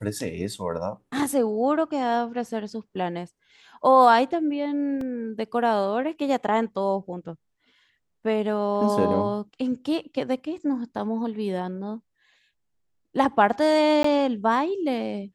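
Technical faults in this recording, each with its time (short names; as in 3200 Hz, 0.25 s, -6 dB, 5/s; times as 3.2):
5.01 gap 2.9 ms
14.03–14.04 gap 14 ms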